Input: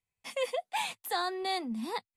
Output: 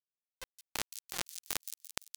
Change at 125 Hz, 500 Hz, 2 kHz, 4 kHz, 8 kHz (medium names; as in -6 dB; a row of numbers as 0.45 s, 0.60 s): no reading, -18.5 dB, -7.0 dB, -5.5 dB, +5.0 dB